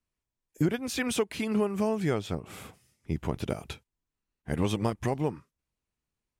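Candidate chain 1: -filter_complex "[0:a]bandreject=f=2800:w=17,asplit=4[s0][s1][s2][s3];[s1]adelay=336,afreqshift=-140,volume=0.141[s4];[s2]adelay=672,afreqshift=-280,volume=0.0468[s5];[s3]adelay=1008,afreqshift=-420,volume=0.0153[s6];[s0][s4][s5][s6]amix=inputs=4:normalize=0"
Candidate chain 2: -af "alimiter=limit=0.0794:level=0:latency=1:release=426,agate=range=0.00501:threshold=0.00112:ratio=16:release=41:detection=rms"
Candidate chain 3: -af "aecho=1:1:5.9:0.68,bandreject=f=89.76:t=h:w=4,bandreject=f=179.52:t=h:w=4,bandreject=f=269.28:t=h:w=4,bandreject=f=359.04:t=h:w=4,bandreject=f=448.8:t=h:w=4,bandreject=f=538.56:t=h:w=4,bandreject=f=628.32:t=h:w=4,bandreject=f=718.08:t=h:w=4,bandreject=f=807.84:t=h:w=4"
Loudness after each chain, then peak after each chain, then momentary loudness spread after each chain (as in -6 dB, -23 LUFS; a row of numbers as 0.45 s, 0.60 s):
-30.5 LUFS, -36.0 LUFS, -29.5 LUFS; -13.5 dBFS, -22.0 dBFS, -11.0 dBFS; 17 LU, 15 LU, 18 LU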